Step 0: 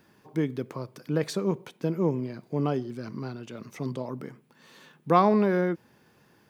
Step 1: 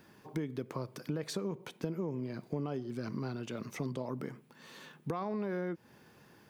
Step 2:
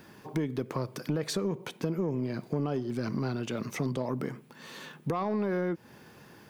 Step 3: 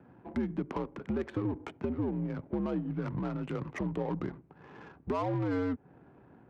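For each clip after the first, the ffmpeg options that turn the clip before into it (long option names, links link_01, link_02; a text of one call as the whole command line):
ffmpeg -i in.wav -af "alimiter=limit=-18dB:level=0:latency=1,acompressor=threshold=-34dB:ratio=6,volume=1dB" out.wav
ffmpeg -i in.wav -af "asoftclip=type=tanh:threshold=-26.5dB,volume=7dB" out.wav
ffmpeg -i in.wav -af "highpass=frequency=210:width_type=q:width=0.5412,highpass=frequency=210:width_type=q:width=1.307,lowpass=frequency=3300:width_type=q:width=0.5176,lowpass=frequency=3300:width_type=q:width=0.7071,lowpass=frequency=3300:width_type=q:width=1.932,afreqshift=-84,adynamicsmooth=sensitivity=6:basefreq=770" out.wav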